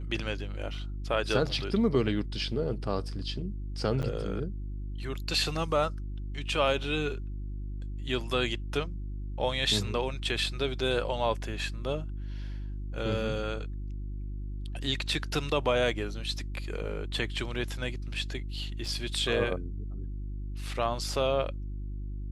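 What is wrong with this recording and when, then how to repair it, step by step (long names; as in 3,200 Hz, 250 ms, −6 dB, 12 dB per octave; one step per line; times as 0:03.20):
mains hum 50 Hz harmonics 7 −36 dBFS
0:04.02–0:04.03: drop-out 8.8 ms
0:18.86: drop-out 3.1 ms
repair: hum removal 50 Hz, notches 7
repair the gap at 0:04.02, 8.8 ms
repair the gap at 0:18.86, 3.1 ms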